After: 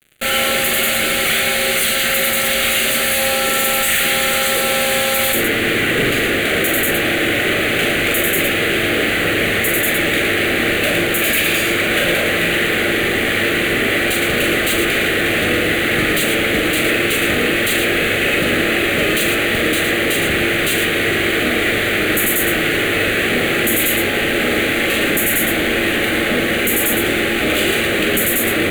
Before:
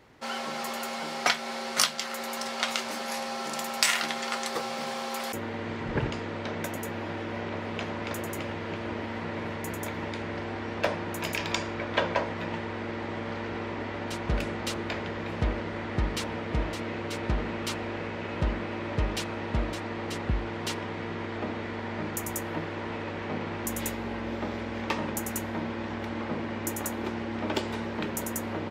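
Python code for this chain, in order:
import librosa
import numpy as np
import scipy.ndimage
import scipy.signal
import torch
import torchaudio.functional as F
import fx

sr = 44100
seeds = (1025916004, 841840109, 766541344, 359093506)

y = scipy.signal.sosfilt(scipy.signal.butter(2, 290.0, 'highpass', fs=sr, output='sos'), x)
y = fx.high_shelf(y, sr, hz=4100.0, db=11.5)
y = fx.fuzz(y, sr, gain_db=44.0, gate_db=-49.0)
y = fx.fixed_phaser(y, sr, hz=2300.0, stages=4)
y = fx.echo_multitap(y, sr, ms=(41, 112), db=(-5.0, -5.0))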